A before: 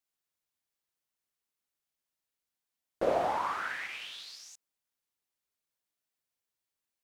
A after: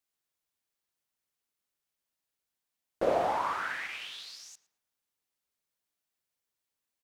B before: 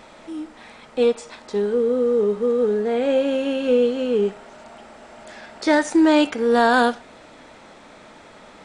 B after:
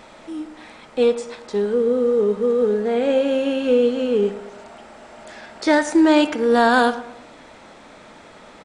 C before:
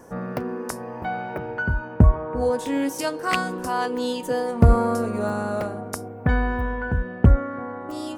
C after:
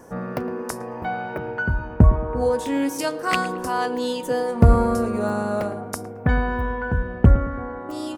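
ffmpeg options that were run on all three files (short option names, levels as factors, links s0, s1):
-filter_complex "[0:a]asplit=2[s0][s1];[s1]adelay=111,lowpass=f=2000:p=1,volume=0.2,asplit=2[s2][s3];[s3]adelay=111,lowpass=f=2000:p=1,volume=0.46,asplit=2[s4][s5];[s5]adelay=111,lowpass=f=2000:p=1,volume=0.46,asplit=2[s6][s7];[s7]adelay=111,lowpass=f=2000:p=1,volume=0.46[s8];[s0][s2][s4][s6][s8]amix=inputs=5:normalize=0,volume=1.12"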